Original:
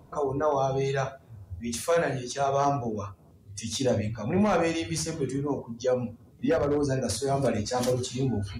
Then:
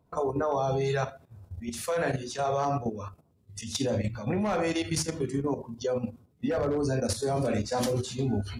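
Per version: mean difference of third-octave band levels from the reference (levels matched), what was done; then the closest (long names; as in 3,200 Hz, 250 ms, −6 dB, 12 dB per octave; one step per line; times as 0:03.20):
1.5 dB: noise gate −48 dBFS, range −9 dB
output level in coarse steps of 10 dB
parametric band 6,300 Hz −2.5 dB 0.24 octaves
level +3 dB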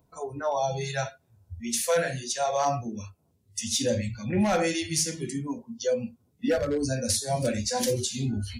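5.5 dB: noise reduction from a noise print of the clip's start 14 dB
high-shelf EQ 3,800 Hz +8.5 dB
notch filter 1,200 Hz, Q 10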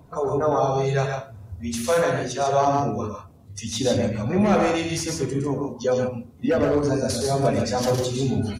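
4.0 dB: spectral magnitudes quantised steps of 15 dB
dynamic equaliser 8,600 Hz, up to −4 dB, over −52 dBFS, Q 2.4
loudspeakers that aren't time-aligned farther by 38 metres −6 dB, 50 metres −5 dB
level +3.5 dB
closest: first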